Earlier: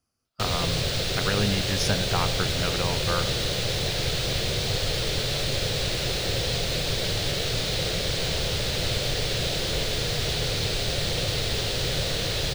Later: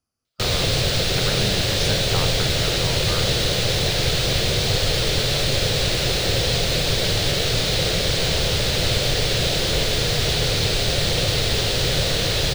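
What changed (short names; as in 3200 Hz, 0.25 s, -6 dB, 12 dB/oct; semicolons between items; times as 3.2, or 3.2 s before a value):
speech -3.5 dB; background +6.0 dB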